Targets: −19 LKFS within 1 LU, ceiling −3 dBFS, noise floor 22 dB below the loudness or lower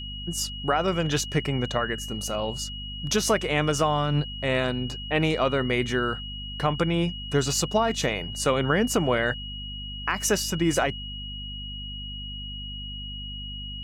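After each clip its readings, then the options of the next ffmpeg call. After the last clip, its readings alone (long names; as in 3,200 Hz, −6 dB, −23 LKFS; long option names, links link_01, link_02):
mains hum 50 Hz; hum harmonics up to 250 Hz; level of the hum −36 dBFS; interfering tone 2,900 Hz; level of the tone −36 dBFS; integrated loudness −26.5 LKFS; sample peak −10.5 dBFS; target loudness −19.0 LKFS
→ -af "bandreject=frequency=50:width_type=h:width=6,bandreject=frequency=100:width_type=h:width=6,bandreject=frequency=150:width_type=h:width=6,bandreject=frequency=200:width_type=h:width=6,bandreject=frequency=250:width_type=h:width=6"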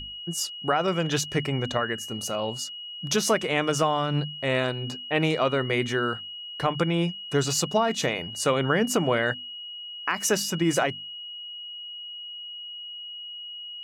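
mains hum none found; interfering tone 2,900 Hz; level of the tone −36 dBFS
→ -af "bandreject=frequency=2900:width=30"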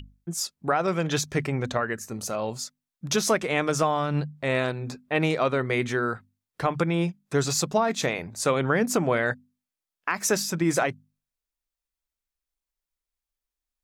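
interfering tone none found; integrated loudness −26.0 LKFS; sample peak −11.0 dBFS; target loudness −19.0 LKFS
→ -af "volume=7dB"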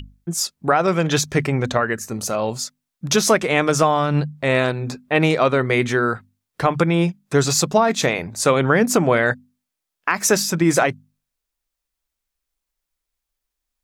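integrated loudness −19.0 LKFS; sample peak −4.0 dBFS; background noise floor −82 dBFS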